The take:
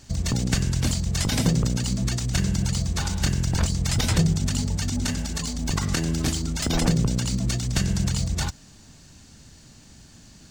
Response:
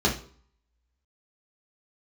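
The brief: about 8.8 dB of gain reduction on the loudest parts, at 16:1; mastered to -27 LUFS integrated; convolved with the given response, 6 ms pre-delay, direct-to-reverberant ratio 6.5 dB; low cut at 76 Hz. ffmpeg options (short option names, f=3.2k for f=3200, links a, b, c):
-filter_complex "[0:a]highpass=76,acompressor=threshold=-25dB:ratio=16,asplit=2[a][b];[1:a]atrim=start_sample=2205,adelay=6[c];[b][c]afir=irnorm=-1:irlink=0,volume=-20.5dB[d];[a][d]amix=inputs=2:normalize=0"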